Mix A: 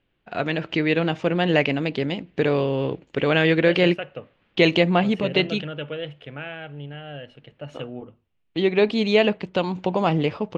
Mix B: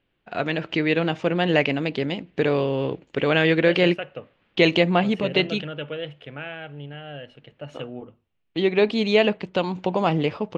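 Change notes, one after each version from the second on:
master: add low shelf 150 Hz -3 dB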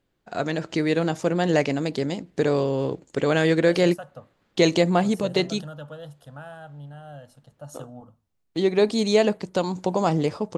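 second voice: add fixed phaser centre 930 Hz, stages 4; master: remove synth low-pass 2800 Hz, resonance Q 2.9

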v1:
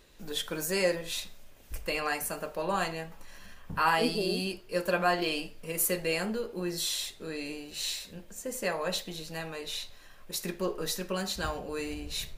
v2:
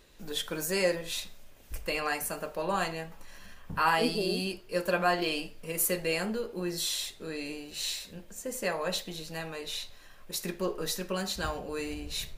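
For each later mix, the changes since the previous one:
none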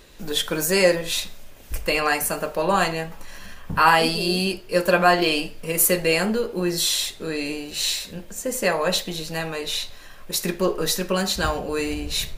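first voice +10.0 dB

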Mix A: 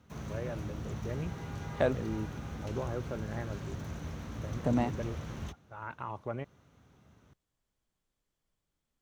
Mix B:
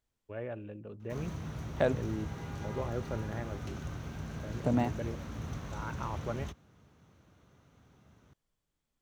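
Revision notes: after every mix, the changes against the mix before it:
background: entry +1.00 s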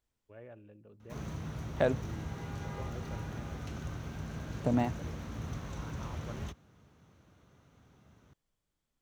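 first voice -11.0 dB

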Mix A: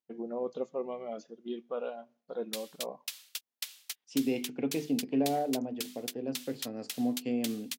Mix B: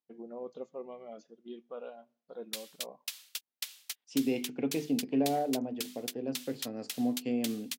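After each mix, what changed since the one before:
first voice -7.0 dB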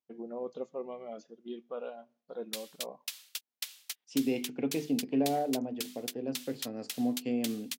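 first voice +3.5 dB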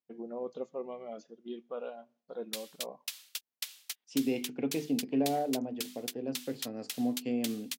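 second voice: send off

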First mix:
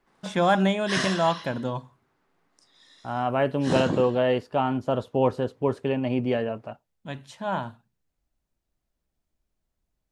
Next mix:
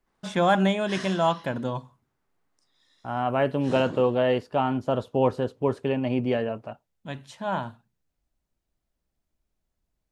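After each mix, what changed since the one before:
background -10.0 dB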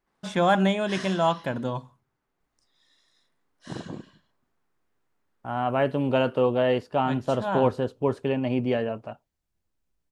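second voice: entry +2.40 s

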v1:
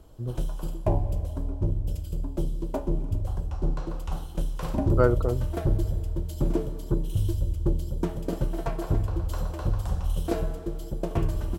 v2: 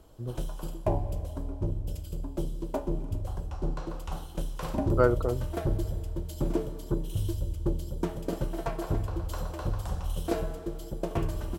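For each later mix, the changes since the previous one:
master: add low shelf 240 Hz -5.5 dB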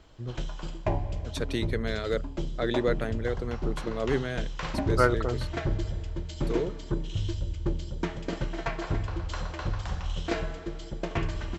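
second voice: unmuted; background: add steep low-pass 7500 Hz 96 dB/oct; master: add graphic EQ 500/2000/4000 Hz -3/+11/+4 dB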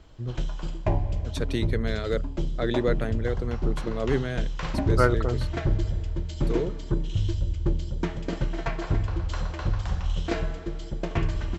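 master: add low shelf 240 Hz +5.5 dB

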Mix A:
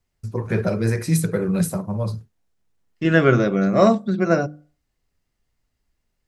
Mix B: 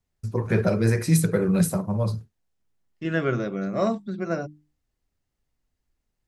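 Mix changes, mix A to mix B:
second voice -6.5 dB; reverb: off

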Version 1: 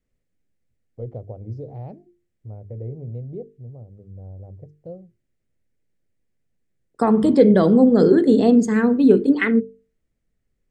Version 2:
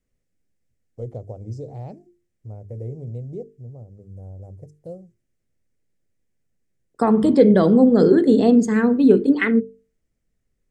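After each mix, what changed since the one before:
first voice: remove air absorption 270 m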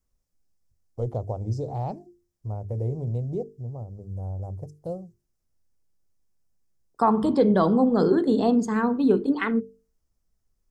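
first voice +9.5 dB; master: add ten-band EQ 125 Hz -5 dB, 250 Hz -5 dB, 500 Hz -7 dB, 1000 Hz +8 dB, 2000 Hz -10 dB, 8000 Hz -7 dB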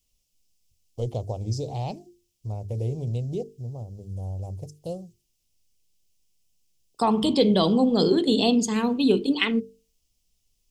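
master: add resonant high shelf 2100 Hz +11 dB, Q 3

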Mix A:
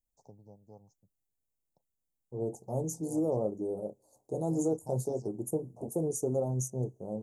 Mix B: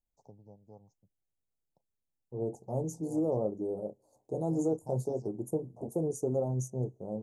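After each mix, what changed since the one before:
master: add high shelf 5400 Hz -10.5 dB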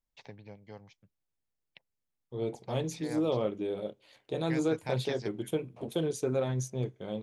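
first voice +5.0 dB; master: remove elliptic band-stop 830–6700 Hz, stop band 60 dB

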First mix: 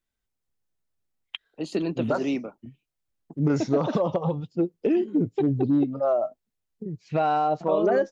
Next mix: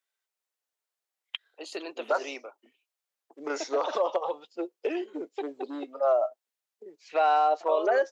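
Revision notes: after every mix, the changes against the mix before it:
second voice +3.0 dB; master: add Bessel high-pass 660 Hz, order 6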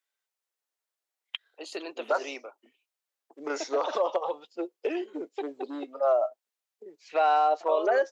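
none

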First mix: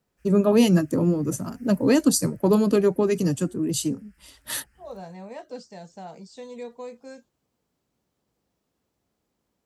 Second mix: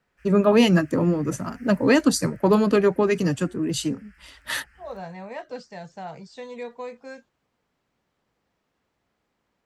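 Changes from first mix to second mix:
second voice: remove brick-wall FIR high-pass 160 Hz; background +4.0 dB; master: add EQ curve 340 Hz 0 dB, 1900 Hz +9 dB, 12000 Hz -8 dB

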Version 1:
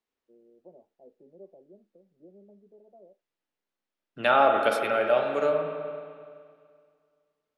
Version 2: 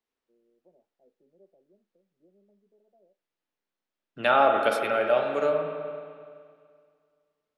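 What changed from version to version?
first voice -10.5 dB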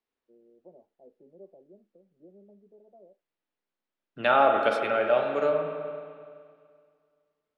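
first voice +10.0 dB; master: add air absorption 80 m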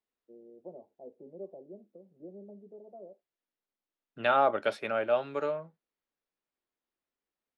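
first voice +6.5 dB; reverb: off

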